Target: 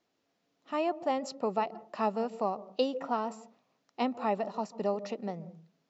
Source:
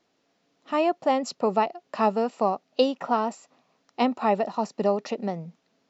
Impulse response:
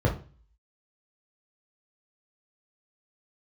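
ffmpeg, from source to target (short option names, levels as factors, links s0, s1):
-filter_complex "[0:a]asplit=2[s0][s1];[1:a]atrim=start_sample=2205,lowpass=2600,adelay=140[s2];[s1][s2]afir=irnorm=-1:irlink=0,volume=0.0251[s3];[s0][s3]amix=inputs=2:normalize=0,volume=0.422"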